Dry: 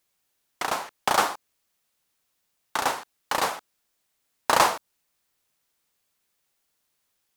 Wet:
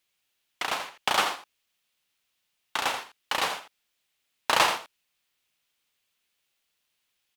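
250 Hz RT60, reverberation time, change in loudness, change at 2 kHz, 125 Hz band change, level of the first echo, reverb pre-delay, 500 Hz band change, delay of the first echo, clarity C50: no reverb audible, no reverb audible, −1.5 dB, +0.5 dB, −5.0 dB, −9.5 dB, no reverb audible, −4.5 dB, 84 ms, no reverb audible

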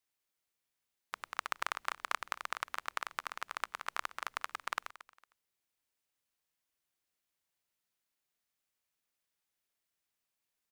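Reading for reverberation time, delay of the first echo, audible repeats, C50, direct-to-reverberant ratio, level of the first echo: no reverb audible, 228 ms, 2, no reverb audible, no reverb audible, −17.5 dB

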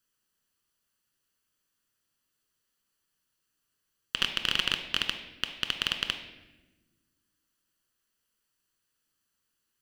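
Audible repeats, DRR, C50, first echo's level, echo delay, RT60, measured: no echo audible, 6.5 dB, 8.5 dB, no echo audible, no echo audible, 1.1 s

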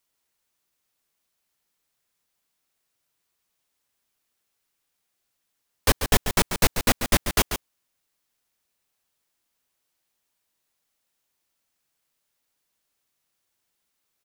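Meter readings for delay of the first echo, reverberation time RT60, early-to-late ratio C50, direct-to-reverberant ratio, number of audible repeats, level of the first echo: 140 ms, no reverb audible, no reverb audible, no reverb audible, 1, −8.5 dB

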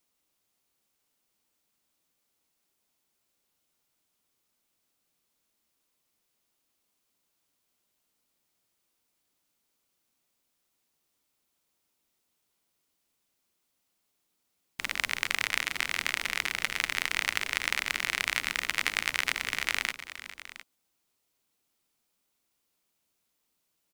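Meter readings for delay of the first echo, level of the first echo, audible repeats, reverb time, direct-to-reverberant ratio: 410 ms, −14.0 dB, 2, no reverb audible, no reverb audible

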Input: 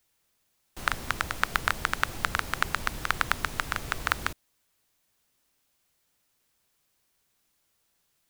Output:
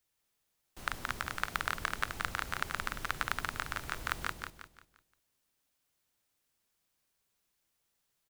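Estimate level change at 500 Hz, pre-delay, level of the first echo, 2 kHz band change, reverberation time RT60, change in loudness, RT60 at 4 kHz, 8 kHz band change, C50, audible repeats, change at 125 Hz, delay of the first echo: −7.0 dB, no reverb audible, −4.0 dB, −7.0 dB, no reverb audible, −7.0 dB, no reverb audible, −7.0 dB, no reverb audible, 4, −7.0 dB, 174 ms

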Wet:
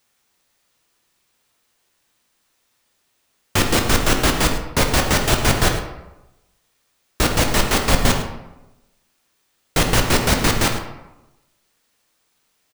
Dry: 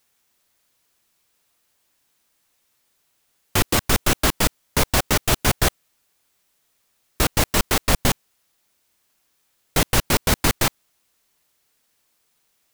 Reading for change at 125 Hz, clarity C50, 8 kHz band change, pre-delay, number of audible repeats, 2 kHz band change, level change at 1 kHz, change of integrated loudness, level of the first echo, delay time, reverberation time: +3.0 dB, 6.0 dB, +1.0 dB, 12 ms, 1, +3.5 dB, +3.5 dB, +2.0 dB, −13.5 dB, 106 ms, 1.0 s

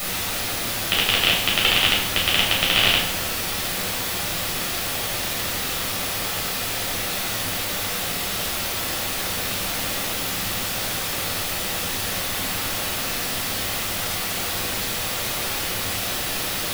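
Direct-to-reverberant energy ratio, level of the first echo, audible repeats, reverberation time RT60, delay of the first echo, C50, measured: −4.0 dB, no echo audible, no echo audible, 0.85 s, no echo audible, 4.0 dB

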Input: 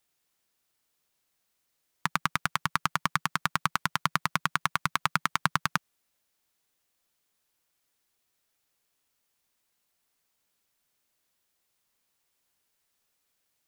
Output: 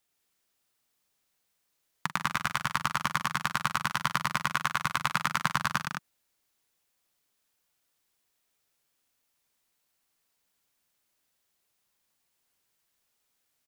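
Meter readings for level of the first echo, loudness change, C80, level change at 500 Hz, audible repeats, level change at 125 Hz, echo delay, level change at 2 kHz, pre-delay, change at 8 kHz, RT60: −13.0 dB, 0.0 dB, no reverb audible, 0.0 dB, 4, −1.0 dB, 43 ms, 0.0 dB, no reverb audible, 0.0 dB, no reverb audible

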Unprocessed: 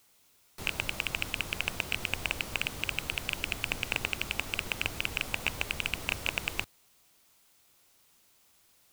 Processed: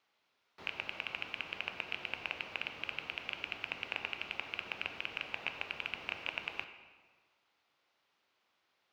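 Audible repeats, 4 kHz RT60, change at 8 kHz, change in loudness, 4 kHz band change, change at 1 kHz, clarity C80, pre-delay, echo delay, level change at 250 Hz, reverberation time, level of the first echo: no echo audible, 1.1 s, below −20 dB, −7.0 dB, −7.5 dB, −5.0 dB, 10.5 dB, 10 ms, no echo audible, −11.0 dB, 1.5 s, no echo audible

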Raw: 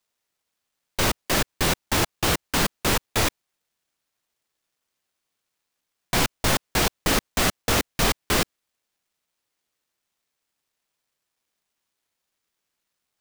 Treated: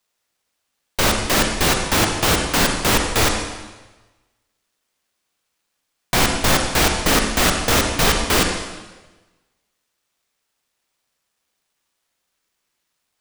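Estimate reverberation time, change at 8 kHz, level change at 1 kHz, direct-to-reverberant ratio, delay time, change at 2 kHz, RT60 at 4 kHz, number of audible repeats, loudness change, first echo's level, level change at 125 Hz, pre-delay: 1.2 s, +6.0 dB, +6.5 dB, 5.5 dB, no echo audible, +6.5 dB, 1.1 s, no echo audible, +6.0 dB, no echo audible, +5.0 dB, 33 ms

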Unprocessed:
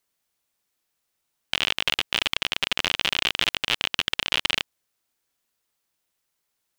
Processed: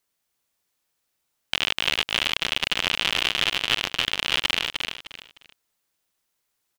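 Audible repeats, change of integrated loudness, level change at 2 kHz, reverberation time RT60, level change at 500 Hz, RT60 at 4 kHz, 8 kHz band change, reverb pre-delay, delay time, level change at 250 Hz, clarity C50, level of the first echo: 3, +1.0 dB, +1.5 dB, no reverb audible, +1.5 dB, no reverb audible, +1.5 dB, no reverb audible, 305 ms, +1.5 dB, no reverb audible, −5.0 dB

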